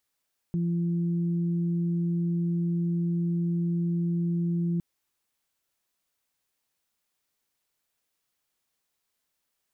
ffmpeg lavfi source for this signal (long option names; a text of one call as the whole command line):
ffmpeg -f lavfi -i "aevalsrc='0.0631*sin(2*PI*171*t)+0.0141*sin(2*PI*342*t)':duration=4.26:sample_rate=44100" out.wav